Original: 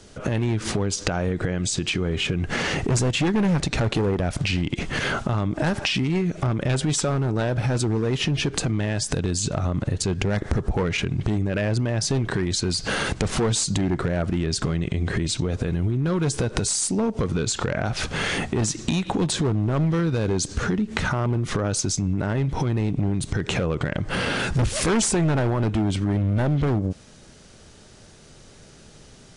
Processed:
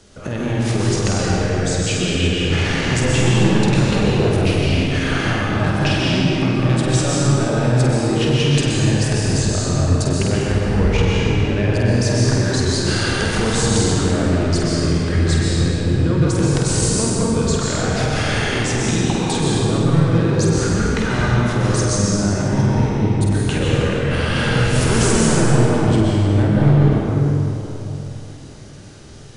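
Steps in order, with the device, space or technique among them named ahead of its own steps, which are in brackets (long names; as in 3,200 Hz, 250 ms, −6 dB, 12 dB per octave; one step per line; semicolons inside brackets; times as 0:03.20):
tunnel (flutter between parallel walls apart 8.4 metres, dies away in 0.5 s; convolution reverb RT60 3.5 s, pre-delay 117 ms, DRR −5 dB)
level −1.5 dB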